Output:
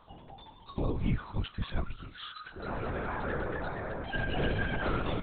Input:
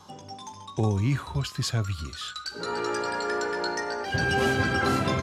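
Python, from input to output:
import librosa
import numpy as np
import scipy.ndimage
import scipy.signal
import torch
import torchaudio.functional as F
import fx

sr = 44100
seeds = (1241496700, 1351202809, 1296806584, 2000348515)

y = x + 0.7 * np.pad(x, (int(7.3 * sr / 1000.0), 0))[:len(x)]
y = fx.lpc_vocoder(y, sr, seeds[0], excitation='whisper', order=10)
y = y * librosa.db_to_amplitude(-8.0)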